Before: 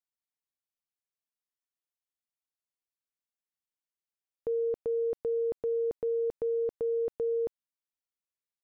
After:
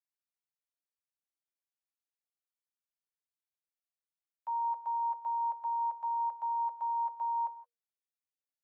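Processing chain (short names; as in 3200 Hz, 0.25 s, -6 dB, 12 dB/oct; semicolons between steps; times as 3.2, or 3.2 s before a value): level quantiser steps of 10 dB; frequency shift +470 Hz; non-linear reverb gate 0.19 s flat, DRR 11 dB; gain -3.5 dB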